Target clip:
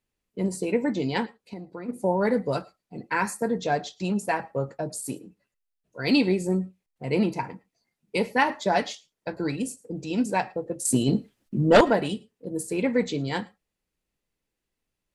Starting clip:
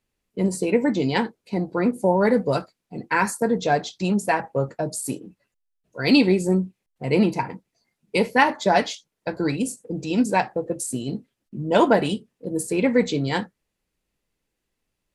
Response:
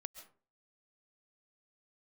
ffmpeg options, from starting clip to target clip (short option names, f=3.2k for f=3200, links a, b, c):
-filter_complex "[0:a]asplit=3[a][b][c];[a]afade=t=out:st=1.25:d=0.02[d];[b]acompressor=threshold=-31dB:ratio=6,afade=t=in:st=1.25:d=0.02,afade=t=out:st=1.88:d=0.02[e];[c]afade=t=in:st=1.88:d=0.02[f];[d][e][f]amix=inputs=3:normalize=0,asettb=1/sr,asplit=3[g][h][i];[g]atrim=end=10.854[j];[h]atrim=start=10.85:end=11.81,asetpts=PTS-STARTPTS,afade=t=in:d=0.004:c=qsin,afade=t=out:st=0.956:d=0.004:c=qsin,aeval=exprs='0.631*sin(PI/2*2.24*val(0)/0.631)':c=same[k];[i]atrim=start=11.806[l];[j][k]acrossfade=d=0.004:c1=hsin:c2=qsin[m];[m][l]acrossfade=d=0.004:c1=qsin:c2=hsin[n];[1:a]atrim=start_sample=2205,afade=t=out:st=0.16:d=0.01,atrim=end_sample=7497[o];[n][o]afir=irnorm=-1:irlink=0"